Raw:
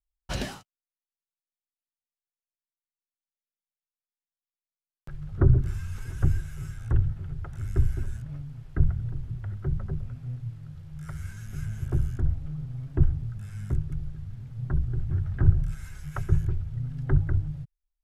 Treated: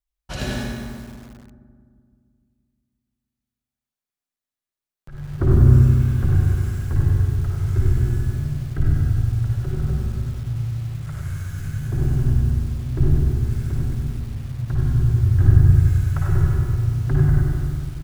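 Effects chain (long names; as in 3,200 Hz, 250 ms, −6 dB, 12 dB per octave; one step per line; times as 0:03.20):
0:05.85–0:06.35: linear-phase brick-wall low-pass 4,800 Hz
far-end echo of a speakerphone 240 ms, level −13 dB
convolution reverb RT60 2.1 s, pre-delay 50 ms, DRR −3.5 dB
feedback echo at a low word length 96 ms, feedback 55%, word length 7 bits, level −5.5 dB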